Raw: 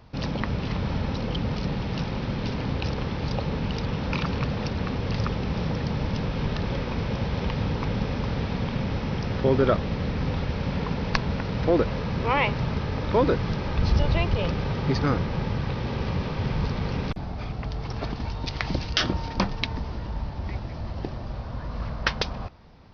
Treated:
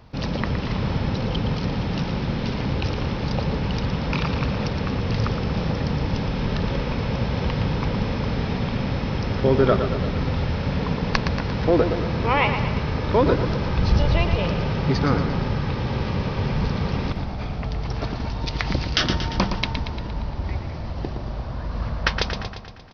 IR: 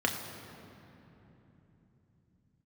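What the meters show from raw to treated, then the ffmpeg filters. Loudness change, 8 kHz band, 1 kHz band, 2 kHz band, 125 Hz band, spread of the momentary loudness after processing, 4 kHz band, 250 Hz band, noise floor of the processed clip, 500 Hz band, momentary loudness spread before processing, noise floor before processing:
+3.5 dB, n/a, +3.5 dB, +3.5 dB, +3.5 dB, 9 LU, +3.5 dB, +3.5 dB, -30 dBFS, +3.5 dB, 10 LU, -34 dBFS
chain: -af "aecho=1:1:116|232|348|464|580|696|812:0.398|0.235|0.139|0.0818|0.0482|0.0285|0.0168,volume=2.5dB"

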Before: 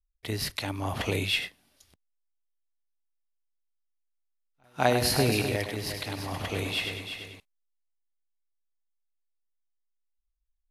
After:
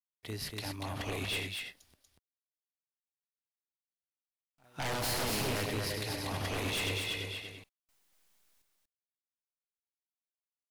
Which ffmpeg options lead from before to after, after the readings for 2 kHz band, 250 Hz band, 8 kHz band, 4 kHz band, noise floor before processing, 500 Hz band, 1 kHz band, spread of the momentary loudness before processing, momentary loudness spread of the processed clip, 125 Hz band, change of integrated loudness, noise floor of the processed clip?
-5.0 dB, -7.5 dB, -3.0 dB, -4.5 dB, -77 dBFS, -8.0 dB, -7.0 dB, 14 LU, 11 LU, -6.5 dB, -6.0 dB, under -85 dBFS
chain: -filter_complex "[0:a]dynaudnorm=f=410:g=11:m=12.5dB,asoftclip=type=tanh:threshold=-10dB,acrusher=bits=10:mix=0:aa=0.000001,aeval=exprs='0.0841*(abs(mod(val(0)/0.0841+3,4)-2)-1)':c=same,asplit=2[a][b];[b]aecho=0:1:238:0.631[c];[a][c]amix=inputs=2:normalize=0,volume=-8dB"

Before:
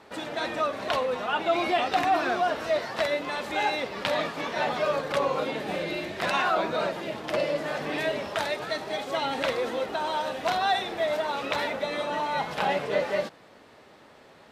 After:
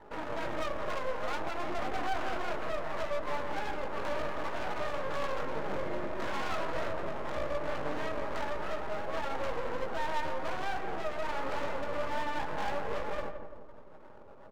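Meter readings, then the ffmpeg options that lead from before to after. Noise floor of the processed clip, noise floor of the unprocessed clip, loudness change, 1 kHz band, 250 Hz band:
-48 dBFS, -53 dBFS, -8.0 dB, -8.0 dB, -7.0 dB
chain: -filter_complex "[0:a]lowpass=f=1.6k:w=0.5412,lowpass=f=1.6k:w=1.3066,bandreject=f=720:w=12,afftfilt=real='re*gte(hypot(re,im),0.00562)':imag='im*gte(hypot(re,im),0.00562)':win_size=1024:overlap=0.75,equalizer=f=900:w=0.37:g=10.5,acompressor=threshold=-27dB:ratio=2,aresample=16000,aeval=exprs='clip(val(0),-1,0.0531)':c=same,aresample=44100,flanger=delay=18.5:depth=2.5:speed=1.3,aeval=exprs='max(val(0),0)':c=same,asplit=2[a][b];[b]adelay=169,lowpass=f=1.1k:p=1,volume=-6dB,asplit=2[c][d];[d]adelay=169,lowpass=f=1.1k:p=1,volume=0.54,asplit=2[e][f];[f]adelay=169,lowpass=f=1.1k:p=1,volume=0.54,asplit=2[g][h];[h]adelay=169,lowpass=f=1.1k:p=1,volume=0.54,asplit=2[i][j];[j]adelay=169,lowpass=f=1.1k:p=1,volume=0.54,asplit=2[k][l];[l]adelay=169,lowpass=f=1.1k:p=1,volume=0.54,asplit=2[m][n];[n]adelay=169,lowpass=f=1.1k:p=1,volume=0.54[o];[a][c][e][g][i][k][m][o]amix=inputs=8:normalize=0"

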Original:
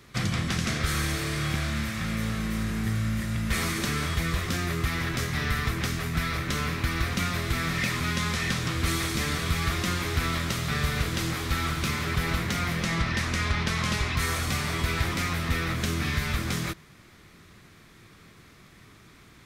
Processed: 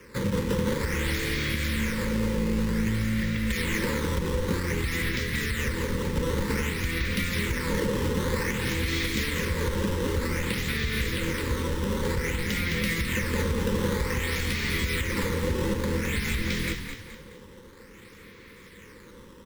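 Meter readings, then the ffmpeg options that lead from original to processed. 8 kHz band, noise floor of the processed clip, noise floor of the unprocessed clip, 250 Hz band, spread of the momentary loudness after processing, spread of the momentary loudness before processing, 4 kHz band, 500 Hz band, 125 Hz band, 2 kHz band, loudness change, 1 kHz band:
-2.5 dB, -49 dBFS, -53 dBFS, +2.5 dB, 2 LU, 2 LU, -2.0 dB, +6.5 dB, -1.0 dB, -0.5 dB, 0.0 dB, -4.0 dB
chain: -filter_complex "[0:a]lowpass=5k,equalizer=f=150:w=1.4:g=-10,acrossover=split=380|1700[a][b][c];[b]acompressor=threshold=-48dB:ratio=6[d];[a][d][c]amix=inputs=3:normalize=0,acrusher=samples=11:mix=1:aa=0.000001:lfo=1:lforange=17.6:lforate=0.53,asuperstop=centerf=700:order=12:qfactor=2.3,asplit=2[e][f];[f]asplit=5[g][h][i][j][k];[g]adelay=212,afreqshift=-52,volume=-8dB[l];[h]adelay=424,afreqshift=-104,volume=-15.1dB[m];[i]adelay=636,afreqshift=-156,volume=-22.3dB[n];[j]adelay=848,afreqshift=-208,volume=-29.4dB[o];[k]adelay=1060,afreqshift=-260,volume=-36.5dB[p];[l][m][n][o][p]amix=inputs=5:normalize=0[q];[e][q]amix=inputs=2:normalize=0,alimiter=limit=-22dB:level=0:latency=1:release=120,equalizer=f=200:t=o:w=0.33:g=8,equalizer=f=500:t=o:w=0.33:g=12,equalizer=f=1.25k:t=o:w=0.33:g=-6,equalizer=f=2k:t=o:w=0.33:g=4,volume=4dB"

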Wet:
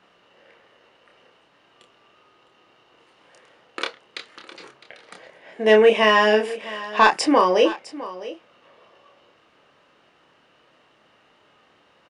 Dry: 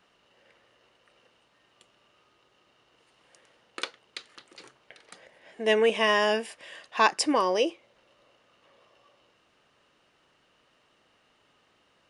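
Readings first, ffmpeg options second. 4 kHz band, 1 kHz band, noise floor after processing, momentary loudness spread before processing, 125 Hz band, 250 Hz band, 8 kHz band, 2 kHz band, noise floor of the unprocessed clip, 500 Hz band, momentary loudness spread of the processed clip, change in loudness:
+5.0 dB, +7.5 dB, -59 dBFS, 21 LU, n/a, +8.0 dB, +1.0 dB, +7.0 dB, -67 dBFS, +8.5 dB, 22 LU, +7.0 dB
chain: -filter_complex "[0:a]lowpass=f=2.8k:p=1,lowshelf=f=90:g=-10.5,asoftclip=type=tanh:threshold=-10.5dB,asplit=2[a][b];[b]adelay=28,volume=-5dB[c];[a][c]amix=inputs=2:normalize=0,asplit=2[d][e];[e]aecho=0:1:658:0.15[f];[d][f]amix=inputs=2:normalize=0,volume=8dB"

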